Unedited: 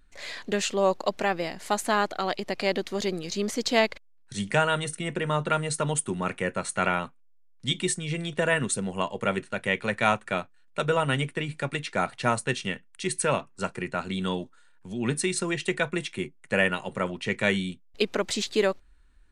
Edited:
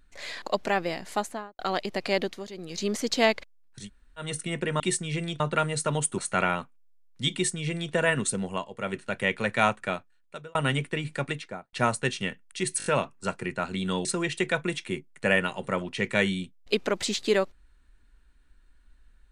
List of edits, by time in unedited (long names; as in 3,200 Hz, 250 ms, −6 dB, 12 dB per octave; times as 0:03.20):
0:00.42–0:00.96: remove
0:01.59–0:02.13: fade out and dull
0:02.75–0:03.35: duck −13.5 dB, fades 0.27 s
0:04.36–0:04.78: fill with room tone, crossfade 0.16 s
0:06.12–0:06.62: remove
0:07.77–0:08.37: duplicate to 0:05.34
0:08.88–0:09.49: duck −8.5 dB, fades 0.26 s
0:10.22–0:10.99: fade out
0:11.69–0:12.17: fade out and dull
0:13.22: stutter 0.02 s, 5 plays
0:14.41–0:15.33: remove